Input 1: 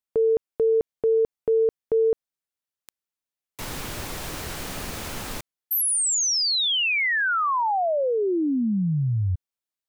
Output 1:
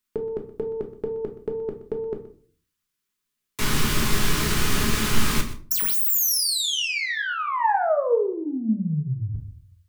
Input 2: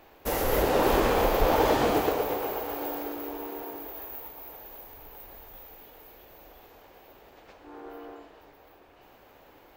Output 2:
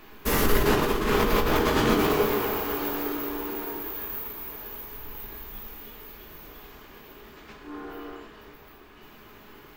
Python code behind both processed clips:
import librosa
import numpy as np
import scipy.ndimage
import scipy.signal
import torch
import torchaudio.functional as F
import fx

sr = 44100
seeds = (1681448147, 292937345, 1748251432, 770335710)

p1 = fx.self_delay(x, sr, depth_ms=0.053)
p2 = fx.band_shelf(p1, sr, hz=650.0, db=-10.0, octaves=1.0)
p3 = fx.over_compress(p2, sr, threshold_db=-28.0, ratio=-0.5)
p4 = p3 + fx.echo_single(p3, sr, ms=124, db=-15.0, dry=0)
p5 = fx.room_shoebox(p4, sr, seeds[0], volume_m3=280.0, walls='furnished', distance_m=1.4)
y = F.gain(torch.from_numpy(p5), 4.0).numpy()